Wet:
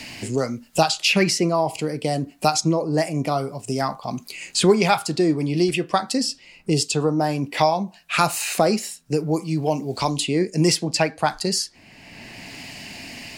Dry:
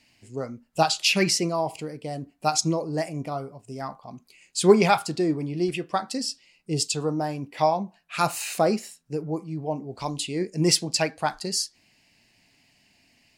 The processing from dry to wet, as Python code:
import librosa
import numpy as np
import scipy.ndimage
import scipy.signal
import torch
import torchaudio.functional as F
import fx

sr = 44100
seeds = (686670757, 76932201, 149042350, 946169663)

y = fx.band_squash(x, sr, depth_pct=70)
y = y * 10.0 ** (5.0 / 20.0)